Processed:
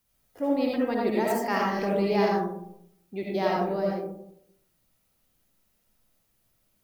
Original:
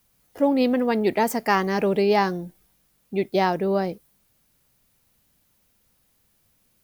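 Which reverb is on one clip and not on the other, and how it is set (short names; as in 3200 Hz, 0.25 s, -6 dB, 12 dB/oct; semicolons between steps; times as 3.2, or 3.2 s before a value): digital reverb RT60 0.74 s, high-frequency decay 0.3×, pre-delay 35 ms, DRR -3.5 dB; gain -9.5 dB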